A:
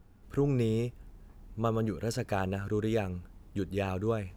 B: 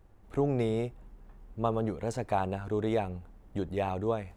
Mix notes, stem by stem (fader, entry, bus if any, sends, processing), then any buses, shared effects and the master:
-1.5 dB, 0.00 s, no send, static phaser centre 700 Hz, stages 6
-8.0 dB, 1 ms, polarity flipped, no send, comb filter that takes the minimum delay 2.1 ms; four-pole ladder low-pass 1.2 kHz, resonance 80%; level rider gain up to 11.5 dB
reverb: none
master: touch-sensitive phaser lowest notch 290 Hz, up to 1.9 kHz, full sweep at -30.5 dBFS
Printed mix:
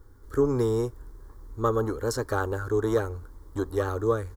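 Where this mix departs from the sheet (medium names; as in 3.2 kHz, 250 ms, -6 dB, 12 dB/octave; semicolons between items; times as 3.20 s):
stem A -1.5 dB -> +8.0 dB; master: missing touch-sensitive phaser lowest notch 290 Hz, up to 1.9 kHz, full sweep at -30.5 dBFS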